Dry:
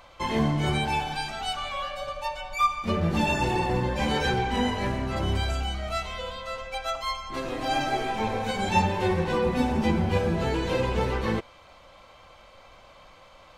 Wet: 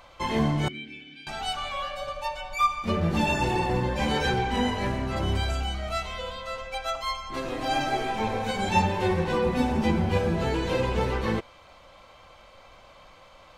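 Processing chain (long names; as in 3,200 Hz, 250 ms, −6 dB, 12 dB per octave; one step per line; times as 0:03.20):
0:00.68–0:01.27: formant filter i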